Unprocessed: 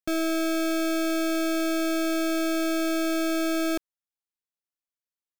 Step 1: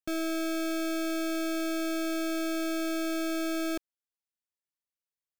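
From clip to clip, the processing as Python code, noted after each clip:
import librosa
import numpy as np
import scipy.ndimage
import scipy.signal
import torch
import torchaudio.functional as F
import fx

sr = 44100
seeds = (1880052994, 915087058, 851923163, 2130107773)

y = fx.peak_eq(x, sr, hz=850.0, db=-2.5, octaves=0.69)
y = y * librosa.db_to_amplitude(-5.0)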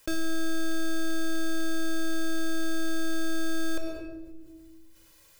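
y = x + 0.72 * np.pad(x, (int(2.0 * sr / 1000.0), 0))[:len(x)]
y = fx.room_shoebox(y, sr, seeds[0], volume_m3=3000.0, walls='furnished', distance_m=2.2)
y = fx.env_flatten(y, sr, amount_pct=50)
y = y * librosa.db_to_amplitude(-3.0)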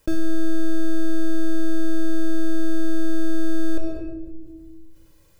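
y = fx.tilt_shelf(x, sr, db=8.5, hz=630.0)
y = y * librosa.db_to_amplitude(3.0)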